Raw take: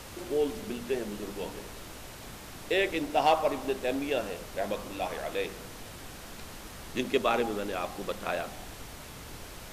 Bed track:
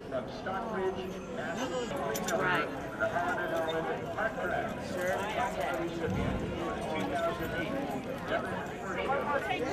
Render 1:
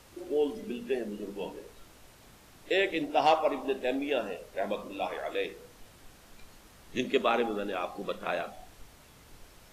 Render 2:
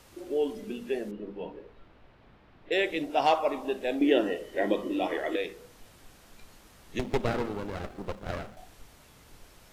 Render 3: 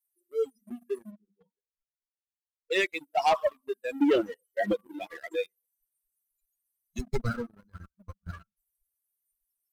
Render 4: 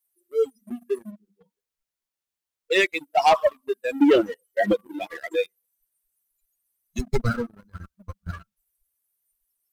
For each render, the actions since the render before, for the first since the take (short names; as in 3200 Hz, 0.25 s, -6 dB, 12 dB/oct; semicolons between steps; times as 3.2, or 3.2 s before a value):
noise print and reduce 11 dB
1.11–2.72 air absorption 370 m; 4.01–5.36 small resonant body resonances 330/1900/3000 Hz, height 16 dB, ringing for 30 ms; 6.99–8.57 running maximum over 33 samples
per-bin expansion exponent 3; sample leveller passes 2
gain +6.5 dB